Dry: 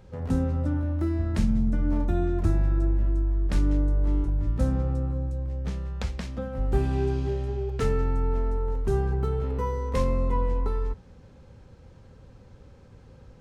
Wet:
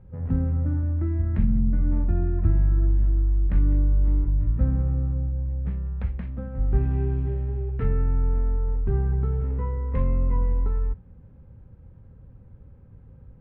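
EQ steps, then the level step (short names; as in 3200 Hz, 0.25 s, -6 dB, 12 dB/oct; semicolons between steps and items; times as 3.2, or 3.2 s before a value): tone controls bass +10 dB, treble -14 dB; dynamic EQ 2000 Hz, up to +6 dB, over -50 dBFS, Q 1.2; air absorption 410 m; -6.5 dB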